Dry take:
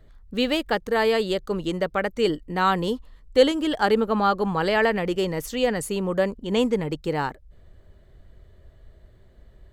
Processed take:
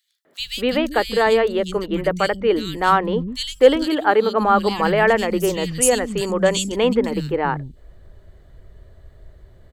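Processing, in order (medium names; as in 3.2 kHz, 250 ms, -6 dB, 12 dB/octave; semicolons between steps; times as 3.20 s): 3.45–4.01 s: high-pass 75 Hz -> 280 Hz 12 dB/octave; 5.82–6.72 s: peaking EQ 7.3 kHz +14.5 dB 1.6 oct; three bands offset in time highs, mids, lows 250/390 ms, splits 230/2900 Hz; trim +5.5 dB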